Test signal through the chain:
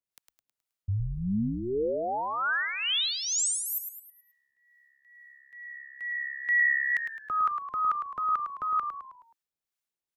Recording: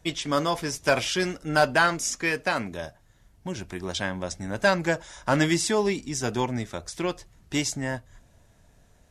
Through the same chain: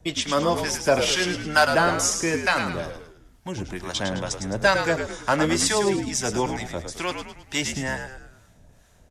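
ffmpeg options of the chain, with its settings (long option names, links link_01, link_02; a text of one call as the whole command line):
ffmpeg -i in.wav -filter_complex "[0:a]acrossover=split=380|820|2300[link_01][link_02][link_03][link_04];[link_01]alimiter=level_in=4.5dB:limit=-24dB:level=0:latency=1,volume=-4.5dB[link_05];[link_05][link_02][link_03][link_04]amix=inputs=4:normalize=0,acrossover=split=780[link_06][link_07];[link_06]aeval=exprs='val(0)*(1-0.7/2+0.7/2*cos(2*PI*2.2*n/s))':channel_layout=same[link_08];[link_07]aeval=exprs='val(0)*(1-0.7/2-0.7/2*cos(2*PI*2.2*n/s))':channel_layout=same[link_09];[link_08][link_09]amix=inputs=2:normalize=0,asplit=6[link_10][link_11][link_12][link_13][link_14][link_15];[link_11]adelay=106,afreqshift=-68,volume=-7dB[link_16];[link_12]adelay=212,afreqshift=-136,volume=-14.1dB[link_17];[link_13]adelay=318,afreqshift=-204,volume=-21.3dB[link_18];[link_14]adelay=424,afreqshift=-272,volume=-28.4dB[link_19];[link_15]adelay=530,afreqshift=-340,volume=-35.5dB[link_20];[link_10][link_16][link_17][link_18][link_19][link_20]amix=inputs=6:normalize=0,volume=6dB" out.wav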